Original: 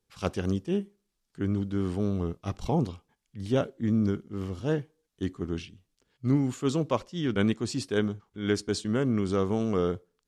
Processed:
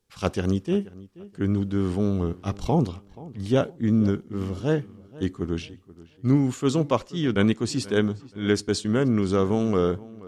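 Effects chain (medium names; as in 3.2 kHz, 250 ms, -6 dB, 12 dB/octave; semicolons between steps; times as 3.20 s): filtered feedback delay 480 ms, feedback 31%, low-pass 2.9 kHz, level -19.5 dB; trim +4.5 dB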